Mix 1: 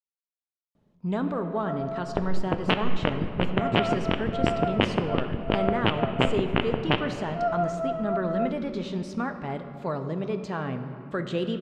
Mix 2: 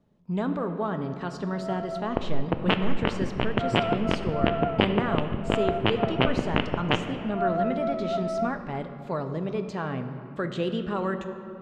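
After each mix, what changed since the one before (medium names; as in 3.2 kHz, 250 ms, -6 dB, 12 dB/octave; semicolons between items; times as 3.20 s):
speech: entry -0.75 s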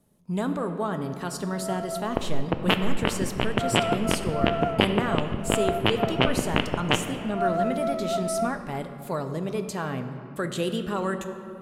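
first sound: remove distance through air 110 m; master: remove distance through air 180 m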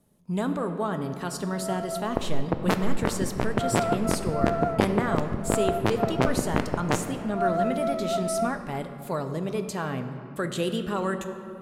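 second sound: remove resonant low-pass 3 kHz, resonance Q 7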